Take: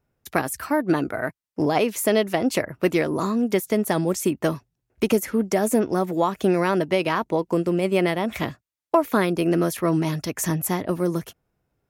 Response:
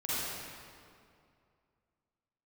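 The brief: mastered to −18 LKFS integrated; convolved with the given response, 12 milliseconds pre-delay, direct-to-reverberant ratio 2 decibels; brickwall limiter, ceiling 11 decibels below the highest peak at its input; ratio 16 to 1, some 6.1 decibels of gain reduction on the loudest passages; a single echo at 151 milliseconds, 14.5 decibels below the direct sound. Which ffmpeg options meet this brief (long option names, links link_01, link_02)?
-filter_complex "[0:a]acompressor=threshold=-20dB:ratio=16,alimiter=limit=-19dB:level=0:latency=1,aecho=1:1:151:0.188,asplit=2[link_01][link_02];[1:a]atrim=start_sample=2205,adelay=12[link_03];[link_02][link_03]afir=irnorm=-1:irlink=0,volume=-9dB[link_04];[link_01][link_04]amix=inputs=2:normalize=0,volume=9.5dB"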